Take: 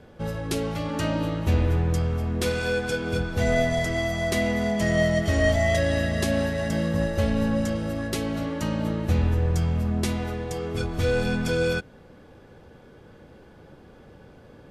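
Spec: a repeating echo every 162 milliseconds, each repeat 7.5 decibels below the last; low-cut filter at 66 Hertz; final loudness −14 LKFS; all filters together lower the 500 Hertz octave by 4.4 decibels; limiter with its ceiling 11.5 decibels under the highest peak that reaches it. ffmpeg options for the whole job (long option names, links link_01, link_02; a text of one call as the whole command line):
ffmpeg -i in.wav -af "highpass=66,equalizer=frequency=500:width_type=o:gain=-5.5,alimiter=limit=-22.5dB:level=0:latency=1,aecho=1:1:162|324|486|648|810:0.422|0.177|0.0744|0.0312|0.0131,volume=17dB" out.wav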